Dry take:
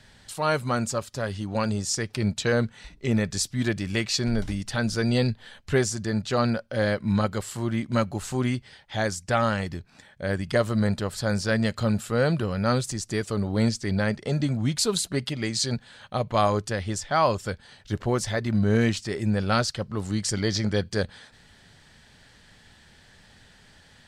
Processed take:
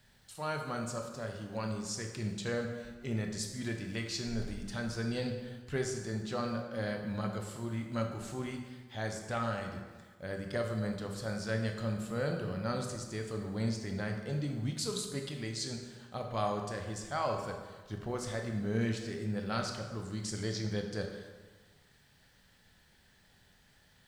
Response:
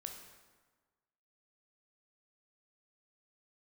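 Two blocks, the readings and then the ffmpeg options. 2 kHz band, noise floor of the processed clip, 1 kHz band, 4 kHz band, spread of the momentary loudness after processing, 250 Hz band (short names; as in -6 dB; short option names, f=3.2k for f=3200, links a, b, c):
-11.0 dB, -65 dBFS, -11.0 dB, -11.0 dB, 7 LU, -11.0 dB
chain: -filter_complex "[0:a]acrusher=bits=9:mix=0:aa=0.000001[a];[1:a]atrim=start_sample=2205[b];[a][b]afir=irnorm=-1:irlink=0,volume=-7.5dB"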